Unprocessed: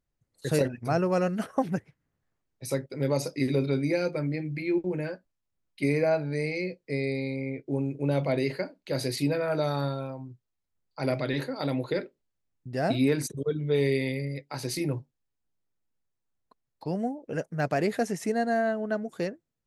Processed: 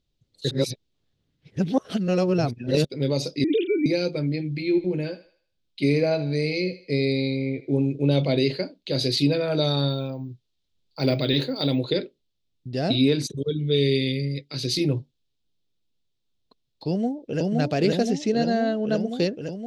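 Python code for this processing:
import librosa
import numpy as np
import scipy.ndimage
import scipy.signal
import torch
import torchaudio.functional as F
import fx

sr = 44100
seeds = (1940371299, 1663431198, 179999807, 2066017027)

y = fx.sine_speech(x, sr, at=(3.44, 3.86))
y = fx.echo_thinned(y, sr, ms=78, feedback_pct=42, hz=420.0, wet_db=-14.5, at=(4.59, 7.86))
y = fx.resample_bad(y, sr, factor=2, down='none', up='hold', at=(9.89, 11.79))
y = fx.peak_eq(y, sr, hz=830.0, db=-14.5, octaves=0.77, at=(13.45, 14.79))
y = fx.echo_throw(y, sr, start_s=16.88, length_s=0.63, ms=520, feedback_pct=70, wet_db=0.0)
y = fx.lowpass(y, sr, hz=7200.0, slope=24, at=(18.1, 18.72))
y = fx.edit(y, sr, fx.reverse_span(start_s=0.51, length_s=2.34), tone=tone)
y = fx.curve_eq(y, sr, hz=(410.0, 930.0, 1900.0, 3600.0, 10000.0), db=(0, -9, -8, 10, -11))
y = fx.rider(y, sr, range_db=10, speed_s=2.0)
y = F.gain(torch.from_numpy(y), 5.5).numpy()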